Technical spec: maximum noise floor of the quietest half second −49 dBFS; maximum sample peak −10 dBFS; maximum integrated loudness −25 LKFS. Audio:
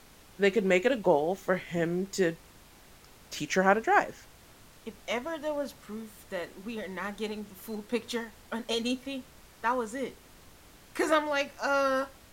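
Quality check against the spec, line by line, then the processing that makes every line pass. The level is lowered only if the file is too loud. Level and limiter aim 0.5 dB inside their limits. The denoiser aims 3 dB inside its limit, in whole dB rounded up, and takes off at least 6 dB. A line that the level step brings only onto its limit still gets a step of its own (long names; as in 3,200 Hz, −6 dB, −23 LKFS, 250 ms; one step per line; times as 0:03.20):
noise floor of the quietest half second −55 dBFS: in spec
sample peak −8.5 dBFS: out of spec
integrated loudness −30.0 LKFS: in spec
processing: brickwall limiter −10.5 dBFS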